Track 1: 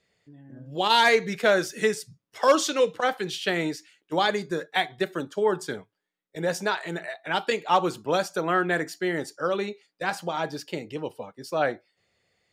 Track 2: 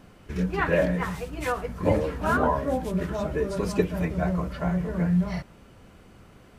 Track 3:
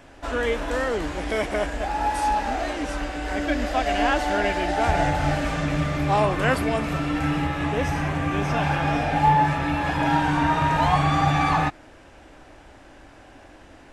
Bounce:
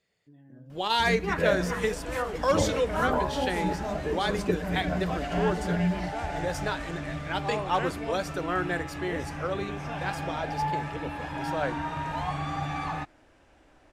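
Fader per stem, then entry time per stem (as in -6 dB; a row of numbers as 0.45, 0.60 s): -5.5, -4.0, -11.5 dB; 0.00, 0.70, 1.35 s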